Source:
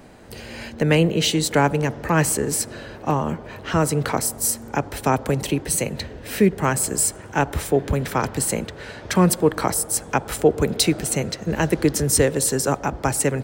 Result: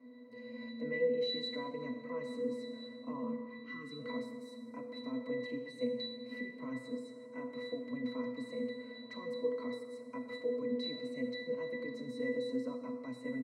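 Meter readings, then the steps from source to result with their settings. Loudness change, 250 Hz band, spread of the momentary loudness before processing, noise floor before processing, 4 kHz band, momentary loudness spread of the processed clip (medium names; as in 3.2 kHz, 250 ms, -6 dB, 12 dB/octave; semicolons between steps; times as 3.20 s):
-18.5 dB, -16.0 dB, 10 LU, -39 dBFS, -16.0 dB, 10 LU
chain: comb 4.6 ms, depth 62%; peak limiter -14 dBFS, peak gain reduction 11.5 dB; spectral selection erased 3.37–3.99 s, 460–1000 Hz; high-pass 220 Hz 24 dB/octave; pitch-class resonator B, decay 0.55 s; Schroeder reverb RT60 1.5 s, combs from 27 ms, DRR 6.5 dB; trim +7 dB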